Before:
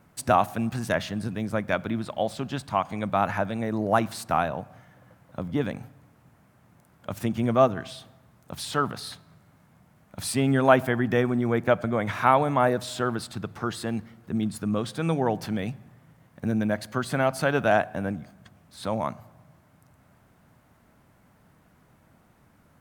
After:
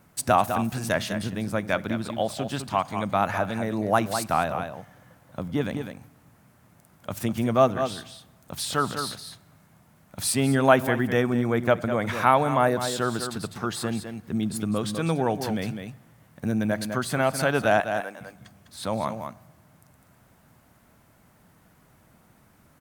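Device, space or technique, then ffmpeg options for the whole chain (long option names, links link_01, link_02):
ducked delay: -filter_complex "[0:a]asettb=1/sr,asplit=3[link_01][link_02][link_03];[link_01]atrim=end=17.804[link_04];[link_02]atrim=start=17.8:end=18.21,asetpts=PTS-STARTPTS,afade=type=in:duration=0.004:curve=qsin,afade=type=out:start_time=0.406:duration=0.004:curve=qsin,highpass=620[link_05];[link_03]atrim=start=18.206[link_06];[link_04][link_05]acrossfade=duration=0.004:curve1=hsin:curve2=qsin[link_07];[link_07][link_06]acrossfade=duration=0.004:curve1=qsin:curve2=hsin,highshelf=frequency=4300:gain=7,asplit=3[link_08][link_09][link_10];[link_09]adelay=203,volume=-7dB[link_11];[link_10]apad=whole_len=1014727[link_12];[link_11][link_12]sidechaincompress=threshold=-29dB:ratio=8:attack=45:release=130[link_13];[link_08][link_13]amix=inputs=2:normalize=0"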